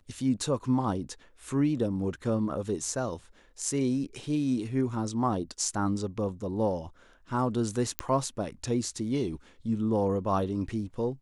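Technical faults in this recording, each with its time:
7.99 pop -10 dBFS

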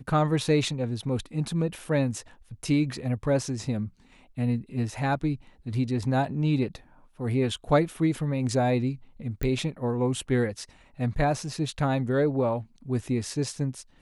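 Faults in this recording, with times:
9.43 pop -16 dBFS

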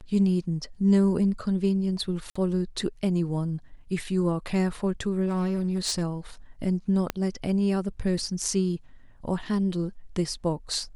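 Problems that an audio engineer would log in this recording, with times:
2.3–2.35 gap 55 ms
5.26–6.03 clipped -21.5 dBFS
7.1 pop -11 dBFS

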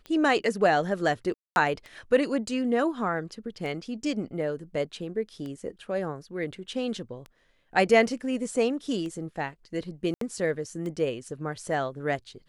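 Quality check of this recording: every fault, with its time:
tick 33 1/3 rpm -26 dBFS
1.34–1.56 gap 0.221 s
10.14–10.21 gap 73 ms

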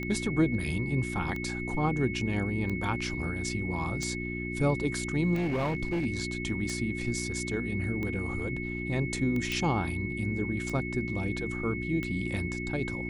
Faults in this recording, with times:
hum 60 Hz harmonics 6 -36 dBFS
tick 45 rpm -23 dBFS
tone 2200 Hz -37 dBFS
5.34–6.06 clipped -25.5 dBFS
9.52 pop

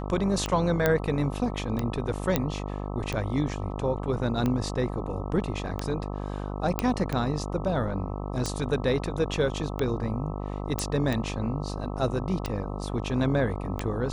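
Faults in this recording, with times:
buzz 50 Hz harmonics 26 -33 dBFS
tick 45 rpm -15 dBFS
0.86 pop -9 dBFS
2.36 pop -9 dBFS
6.79 pop -10 dBFS
10.79 pop

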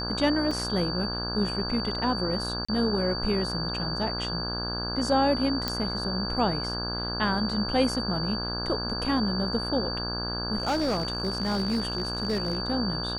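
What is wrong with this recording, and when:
buzz 60 Hz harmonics 28 -34 dBFS
tone 4600 Hz -32 dBFS
0.51 gap 3.8 ms
2.65–2.69 gap 35 ms
5.68 pop -13 dBFS
10.58–12.58 clipped -22 dBFS

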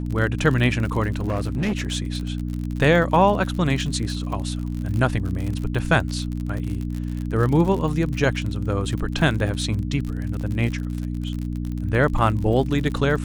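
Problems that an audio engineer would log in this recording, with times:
crackle 48/s -27 dBFS
hum 60 Hz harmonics 5 -27 dBFS
1.21–1.96 clipped -19 dBFS

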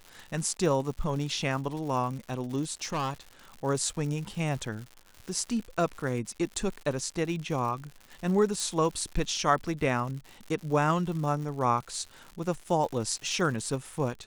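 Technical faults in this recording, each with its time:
crackle 150/s -37 dBFS
2.82–3.14 clipped -26.5 dBFS
8.6 pop

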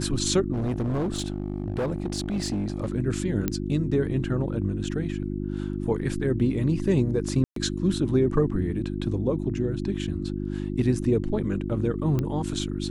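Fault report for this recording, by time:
hum 50 Hz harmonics 7 -30 dBFS
0.52–2.9 clipped -23 dBFS
3.48 pop -11 dBFS
7.44–7.56 gap 0.123 s
12.19 pop -15 dBFS

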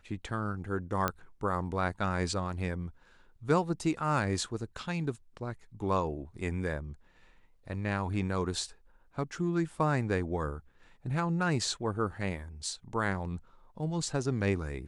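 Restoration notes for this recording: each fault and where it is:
1.08 pop -14 dBFS

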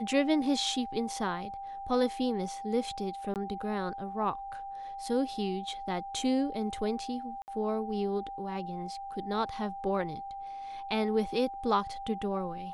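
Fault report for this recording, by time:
tone 790 Hz -38 dBFS
3.34–3.36 gap 18 ms
7.42–7.48 gap 59 ms

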